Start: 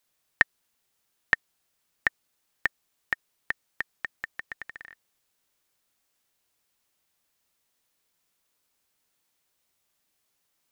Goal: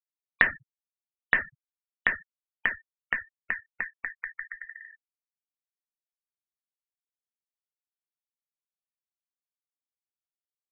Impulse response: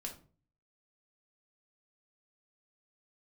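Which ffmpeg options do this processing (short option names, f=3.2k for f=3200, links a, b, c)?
-filter_complex "[1:a]atrim=start_sample=2205[a];[0:a][a]afir=irnorm=-1:irlink=0,afftfilt=real='re*gte(hypot(re,im),0.0141)':imag='im*gte(hypot(re,im),0.0141)':win_size=1024:overlap=0.75,volume=4.5dB"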